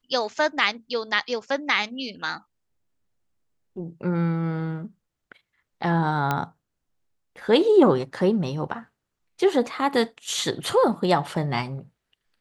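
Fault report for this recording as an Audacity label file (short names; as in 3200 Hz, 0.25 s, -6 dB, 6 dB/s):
6.310000	6.310000	pop -10 dBFS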